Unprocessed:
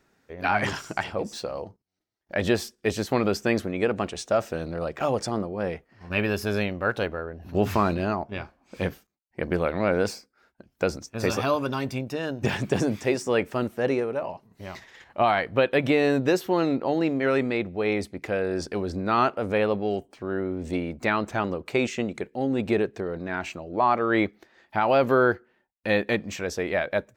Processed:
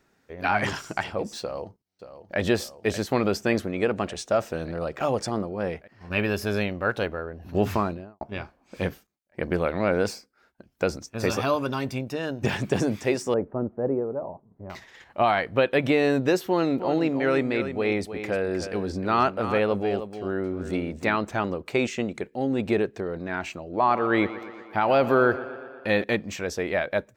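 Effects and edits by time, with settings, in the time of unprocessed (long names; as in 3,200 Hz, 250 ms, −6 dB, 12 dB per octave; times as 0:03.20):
0:01.41–0:02.39: delay throw 580 ms, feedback 75%, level −12 dB
0:07.63–0:08.21: fade out and dull
0:13.34–0:14.70: Bessel low-pass filter 720 Hz, order 4
0:16.47–0:21.17: single-tap delay 309 ms −10 dB
0:23.61–0:26.04: tape delay 121 ms, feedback 71%, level −13.5 dB, low-pass 5,800 Hz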